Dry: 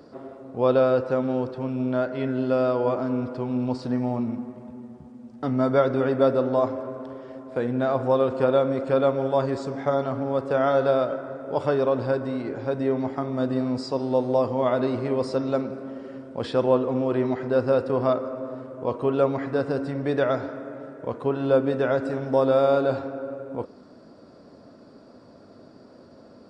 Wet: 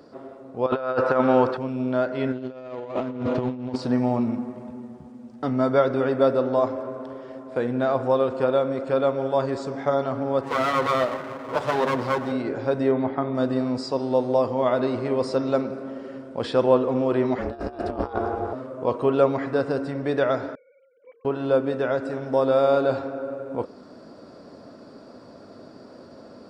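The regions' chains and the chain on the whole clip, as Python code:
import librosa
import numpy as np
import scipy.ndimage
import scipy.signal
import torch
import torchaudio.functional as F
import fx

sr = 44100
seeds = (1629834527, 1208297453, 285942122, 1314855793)

y = fx.chain(x, sr, fx.peak_eq(hz=1300.0, db=12.0, octaves=2.3),
    fx.over_compress(threshold_db=-19.0, ratio=-0.5), at=(0.66, 1.57))
y = fx.chain(y, sr, fx.median_filter(points=25),
    fx.lowpass(hz=4900.0, slope=12),
    fx.over_compress(threshold_db=-31.0, ratio=-0.5), at=(2.32, 3.76))
y = fx.chain(y, sr, fx.lower_of_two(delay_ms=8.1),
    fx.highpass(hz=130.0, slope=12), at=(10.43, 12.32))
y = fx.chain(y, sr, fx.steep_lowpass(hz=3900.0, slope=36),
    fx.peak_eq(hz=2800.0, db=-5.0, octaves=0.28), at=(12.91, 13.35))
y = fx.chain(y, sr, fx.over_compress(threshold_db=-27.0, ratio=-0.5),
    fx.ring_mod(carrier_hz=170.0), at=(17.38, 18.53))
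y = fx.chain(y, sr, fx.sine_speech(),
    fx.formant_cascade(vowel='i'),
    fx.peak_eq(hz=1800.0, db=10.5, octaves=1.3), at=(20.55, 21.25))
y = fx.low_shelf(y, sr, hz=220.0, db=-4.5)
y = fx.rider(y, sr, range_db=4, speed_s=2.0)
y = F.gain(torch.from_numpy(y), 1.5).numpy()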